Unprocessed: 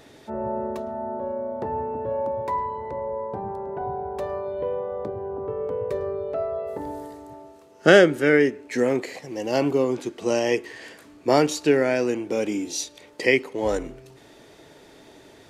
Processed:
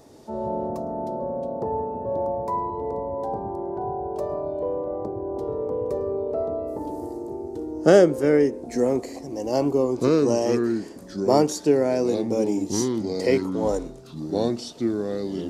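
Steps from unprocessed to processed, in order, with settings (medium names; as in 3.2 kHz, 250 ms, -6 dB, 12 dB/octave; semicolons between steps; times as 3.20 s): high-order bell 2.3 kHz -12 dB; ever faster or slower copies 113 ms, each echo -4 st, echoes 2, each echo -6 dB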